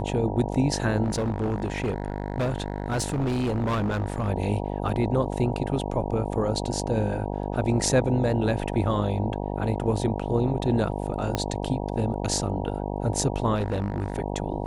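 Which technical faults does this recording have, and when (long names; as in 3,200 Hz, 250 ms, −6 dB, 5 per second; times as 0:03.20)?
mains buzz 50 Hz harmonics 19 −30 dBFS
0:01.03–0:04.29: clipping −22 dBFS
0:04.89: drop-out 3.1 ms
0:11.35: click −10 dBFS
0:13.55–0:14.16: clipping −22 dBFS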